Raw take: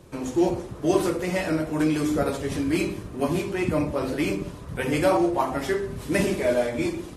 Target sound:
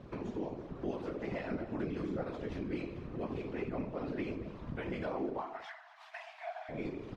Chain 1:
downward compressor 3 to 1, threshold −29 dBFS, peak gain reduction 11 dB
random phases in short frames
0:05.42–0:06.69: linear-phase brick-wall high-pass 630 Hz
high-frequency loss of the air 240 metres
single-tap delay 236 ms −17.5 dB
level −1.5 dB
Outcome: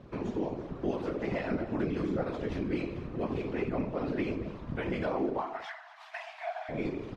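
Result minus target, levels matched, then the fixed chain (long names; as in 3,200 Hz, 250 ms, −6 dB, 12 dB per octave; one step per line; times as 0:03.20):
downward compressor: peak gain reduction −5.5 dB
downward compressor 3 to 1, threshold −37.5 dBFS, peak gain reduction 16.5 dB
random phases in short frames
0:05.42–0:06.69: linear-phase brick-wall high-pass 630 Hz
high-frequency loss of the air 240 metres
single-tap delay 236 ms −17.5 dB
level −1.5 dB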